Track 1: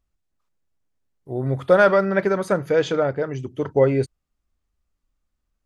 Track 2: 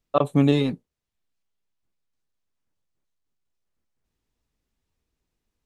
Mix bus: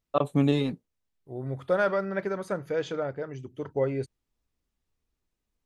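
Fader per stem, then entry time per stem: -10.0, -4.5 dB; 0.00, 0.00 s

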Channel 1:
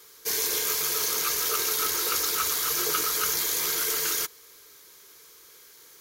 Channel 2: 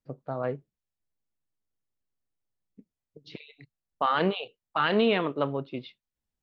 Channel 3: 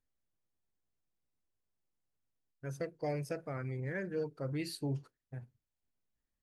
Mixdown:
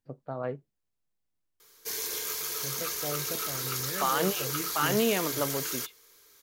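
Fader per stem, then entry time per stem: -7.0, -3.0, -1.0 dB; 1.60, 0.00, 0.00 s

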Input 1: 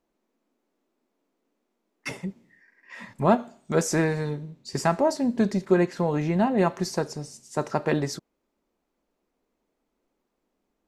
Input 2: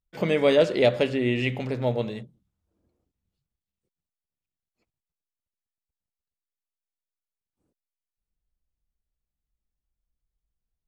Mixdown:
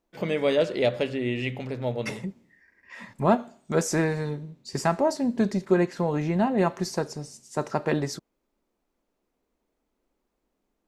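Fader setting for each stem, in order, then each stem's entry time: -1.0, -3.5 dB; 0.00, 0.00 s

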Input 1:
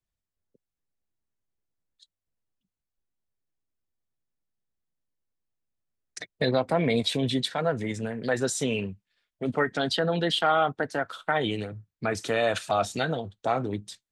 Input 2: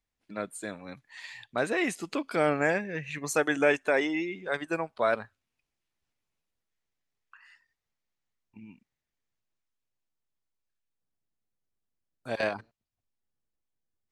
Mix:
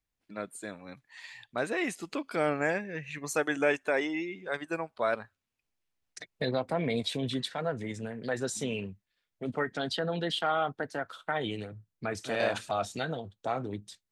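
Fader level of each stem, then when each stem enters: -6.0, -3.0 dB; 0.00, 0.00 s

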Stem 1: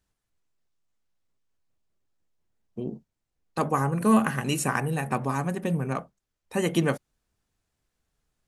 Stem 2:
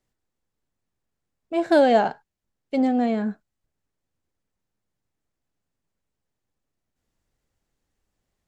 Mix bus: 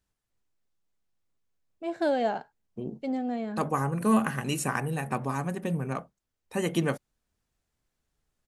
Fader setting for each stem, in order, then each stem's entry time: -3.0, -9.5 dB; 0.00, 0.30 s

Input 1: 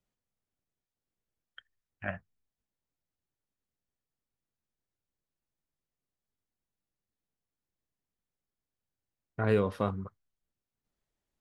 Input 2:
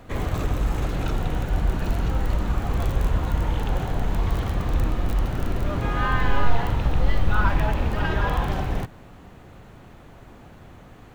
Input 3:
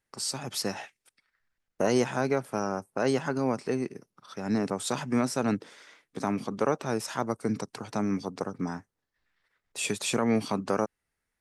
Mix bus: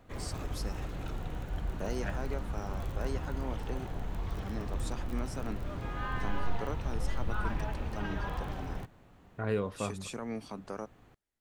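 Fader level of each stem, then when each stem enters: -5.0, -13.0, -13.0 dB; 0.00, 0.00, 0.00 s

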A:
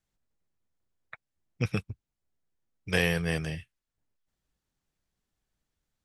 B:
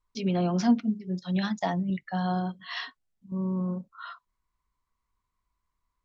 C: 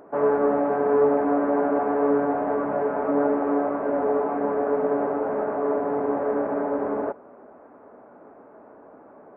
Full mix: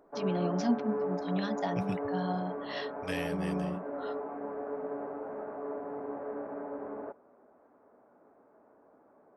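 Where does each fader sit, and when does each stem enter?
-11.5, -6.0, -14.0 dB; 0.15, 0.00, 0.00 s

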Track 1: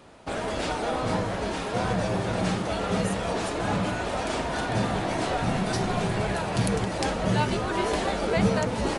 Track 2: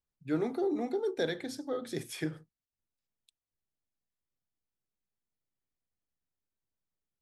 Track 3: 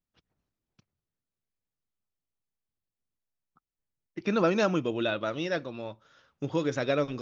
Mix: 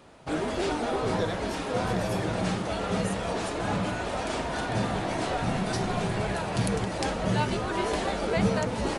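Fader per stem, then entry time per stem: -2.0 dB, -1.0 dB, off; 0.00 s, 0.00 s, off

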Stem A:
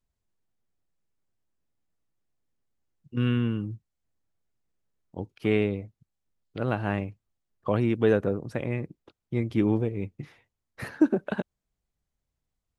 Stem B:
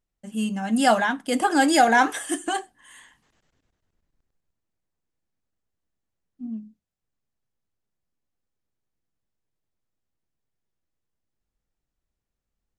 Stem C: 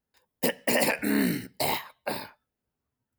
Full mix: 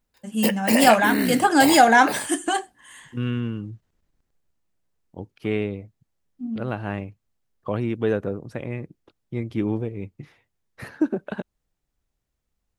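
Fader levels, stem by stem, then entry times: -1.0, +3.0, +2.5 dB; 0.00, 0.00, 0.00 s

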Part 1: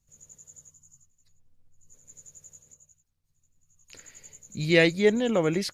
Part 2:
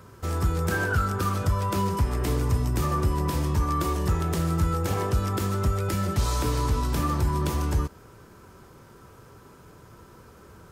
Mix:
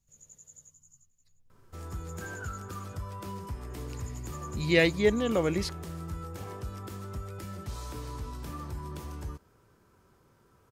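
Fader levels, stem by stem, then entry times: -3.0, -14.0 dB; 0.00, 1.50 s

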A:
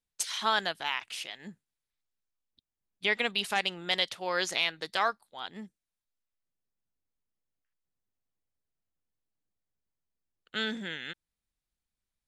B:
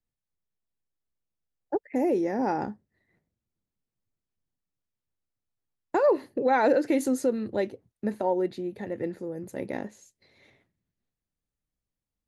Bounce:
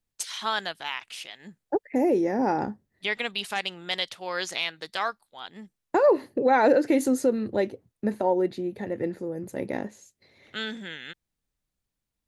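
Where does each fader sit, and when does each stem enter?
-0.5, +2.5 dB; 0.00, 0.00 s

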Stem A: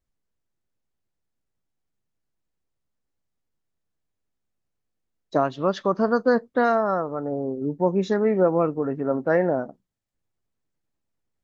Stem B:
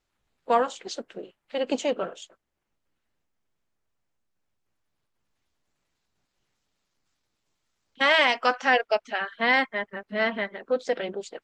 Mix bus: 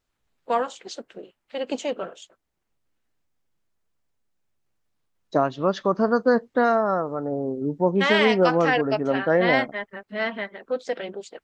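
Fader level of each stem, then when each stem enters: +0.5, -1.5 dB; 0.00, 0.00 s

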